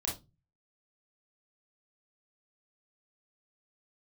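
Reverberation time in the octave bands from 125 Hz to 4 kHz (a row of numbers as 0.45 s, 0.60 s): 0.60 s, 0.40 s, 0.25 s, 0.20 s, 0.15 s, 0.20 s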